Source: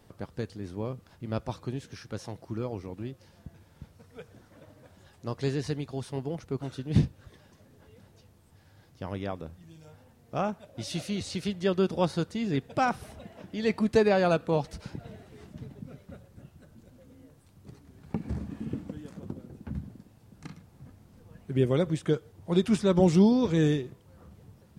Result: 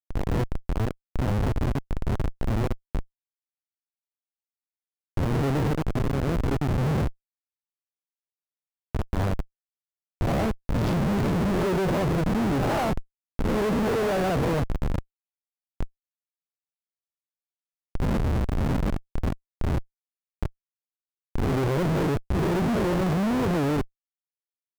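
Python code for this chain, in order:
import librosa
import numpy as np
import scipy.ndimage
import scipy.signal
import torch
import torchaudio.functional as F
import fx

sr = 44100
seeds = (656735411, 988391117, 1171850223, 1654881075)

p1 = fx.spec_swells(x, sr, rise_s=0.88)
p2 = p1 + fx.room_flutter(p1, sr, wall_m=11.1, rt60_s=0.21, dry=0)
p3 = fx.schmitt(p2, sr, flips_db=-30.5)
p4 = fx.high_shelf(p3, sr, hz=2400.0, db=-10.5)
p5 = fx.record_warp(p4, sr, rpm=78.0, depth_cents=160.0)
y = p5 * librosa.db_to_amplitude(6.0)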